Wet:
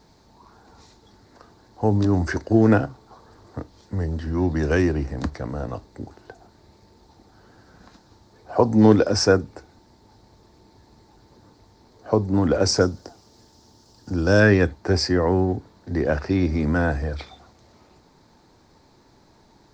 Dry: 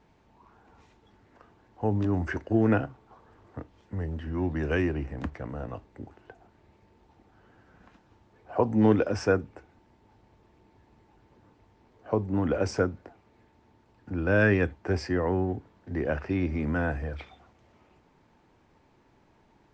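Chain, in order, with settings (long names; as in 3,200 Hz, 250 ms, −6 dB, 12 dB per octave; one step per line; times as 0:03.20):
high shelf with overshoot 3,500 Hz +7 dB, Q 3, from 0:12.81 +13.5 dB, from 0:14.40 +6 dB
level +7 dB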